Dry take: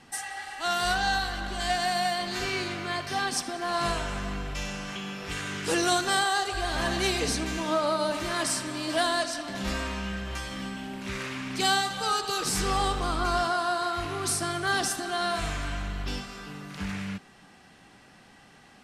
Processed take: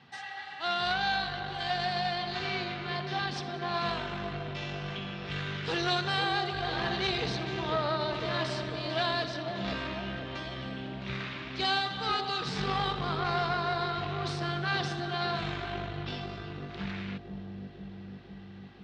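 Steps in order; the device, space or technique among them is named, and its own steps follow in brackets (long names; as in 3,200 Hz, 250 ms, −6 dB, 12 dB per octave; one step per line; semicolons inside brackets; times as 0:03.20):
analogue delay pedal into a guitar amplifier (bucket-brigade delay 499 ms, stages 2,048, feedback 73%, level −4 dB; tube saturation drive 20 dB, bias 0.65; loudspeaker in its box 87–4,400 Hz, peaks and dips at 140 Hz +7 dB, 300 Hz −7 dB, 550 Hz −3 dB, 3,700 Hz +5 dB)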